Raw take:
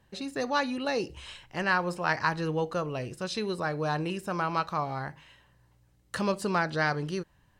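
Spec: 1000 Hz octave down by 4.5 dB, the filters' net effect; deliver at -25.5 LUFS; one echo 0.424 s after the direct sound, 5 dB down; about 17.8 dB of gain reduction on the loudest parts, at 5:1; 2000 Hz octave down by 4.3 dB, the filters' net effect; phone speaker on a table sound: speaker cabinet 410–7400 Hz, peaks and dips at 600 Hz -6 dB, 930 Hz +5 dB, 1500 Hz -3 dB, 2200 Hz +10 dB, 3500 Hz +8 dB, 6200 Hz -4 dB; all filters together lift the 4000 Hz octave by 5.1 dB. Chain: bell 1000 Hz -6.5 dB; bell 2000 Hz -6 dB; bell 4000 Hz +3.5 dB; compressor 5:1, threshold -47 dBFS; speaker cabinet 410–7400 Hz, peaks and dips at 600 Hz -6 dB, 930 Hz +5 dB, 1500 Hz -3 dB, 2200 Hz +10 dB, 3500 Hz +8 dB, 6200 Hz -4 dB; echo 0.424 s -5 dB; gain +23 dB

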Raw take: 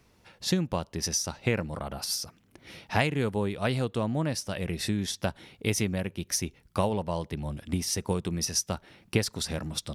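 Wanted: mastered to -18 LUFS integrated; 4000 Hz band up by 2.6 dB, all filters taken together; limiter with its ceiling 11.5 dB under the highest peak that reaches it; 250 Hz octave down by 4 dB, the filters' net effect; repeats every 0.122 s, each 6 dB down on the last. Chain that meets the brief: bell 250 Hz -6 dB; bell 4000 Hz +3.5 dB; limiter -20 dBFS; feedback echo 0.122 s, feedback 50%, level -6 dB; gain +13.5 dB

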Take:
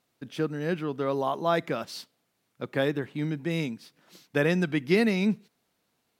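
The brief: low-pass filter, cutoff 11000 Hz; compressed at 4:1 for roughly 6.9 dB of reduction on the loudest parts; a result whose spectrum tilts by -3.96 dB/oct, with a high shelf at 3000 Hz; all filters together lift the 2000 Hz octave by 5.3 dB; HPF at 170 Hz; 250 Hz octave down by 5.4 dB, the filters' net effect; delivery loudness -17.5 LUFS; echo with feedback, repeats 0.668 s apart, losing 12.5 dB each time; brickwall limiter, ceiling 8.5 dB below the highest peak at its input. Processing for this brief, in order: HPF 170 Hz; LPF 11000 Hz; bell 250 Hz -6 dB; bell 2000 Hz +8.5 dB; high shelf 3000 Hz -6 dB; compressor 4:1, threshold -27 dBFS; limiter -23.5 dBFS; feedback echo 0.668 s, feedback 24%, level -12.5 dB; gain +18 dB

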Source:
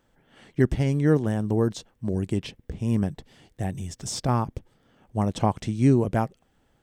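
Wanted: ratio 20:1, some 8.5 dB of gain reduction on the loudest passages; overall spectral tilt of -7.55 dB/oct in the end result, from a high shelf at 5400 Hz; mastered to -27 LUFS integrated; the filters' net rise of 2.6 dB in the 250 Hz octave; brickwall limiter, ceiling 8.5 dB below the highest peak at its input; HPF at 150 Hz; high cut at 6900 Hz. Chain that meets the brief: HPF 150 Hz; LPF 6900 Hz; bell 250 Hz +4 dB; high shelf 5400 Hz -8.5 dB; compressor 20:1, threshold -20 dBFS; gain +3.5 dB; limiter -14 dBFS

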